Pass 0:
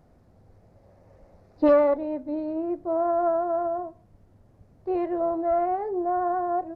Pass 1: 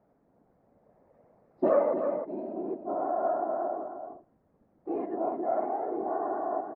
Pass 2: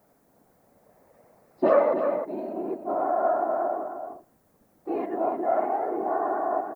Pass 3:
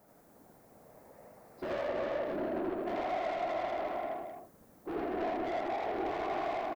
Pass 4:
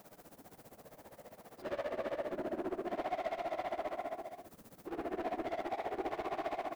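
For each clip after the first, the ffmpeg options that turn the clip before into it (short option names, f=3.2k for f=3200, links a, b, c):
-filter_complex "[0:a]afftfilt=real='hypot(re,im)*cos(2*PI*random(0))':imag='hypot(re,im)*sin(2*PI*random(1))':win_size=512:overlap=0.75,acrossover=split=180 2100:gain=0.158 1 0.126[a][b][c];[a][b][c]amix=inputs=3:normalize=0,asplit=2[d][e];[e]adelay=309,volume=-7dB,highshelf=f=4k:g=-6.95[f];[d][f]amix=inputs=2:normalize=0"
-af "crystalizer=i=9:c=0,volume=2dB"
-af "acompressor=threshold=-28dB:ratio=6,asoftclip=type=tanh:threshold=-35dB,aecho=1:1:81.63|262.4:0.891|0.501"
-af "aeval=exprs='val(0)+0.5*0.00335*sgn(val(0))':c=same,tremolo=f=15:d=0.85,volume=-1dB"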